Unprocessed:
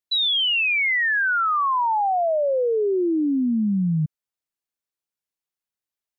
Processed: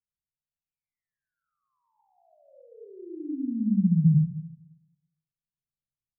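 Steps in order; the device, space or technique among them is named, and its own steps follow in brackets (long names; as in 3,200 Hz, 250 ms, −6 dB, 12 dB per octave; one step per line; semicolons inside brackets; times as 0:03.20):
club heard from the street (brickwall limiter −23 dBFS, peak gain reduction 5 dB; low-pass filter 180 Hz 24 dB per octave; convolution reverb RT60 0.90 s, pre-delay 76 ms, DRR −3 dB)
level +4.5 dB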